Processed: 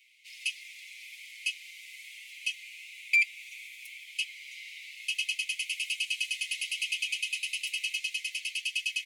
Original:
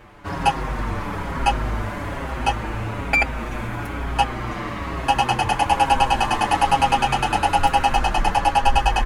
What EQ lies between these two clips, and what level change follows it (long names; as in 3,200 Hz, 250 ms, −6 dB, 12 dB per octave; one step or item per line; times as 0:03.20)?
Chebyshev high-pass filter 2,100 Hz, order 8
−3.5 dB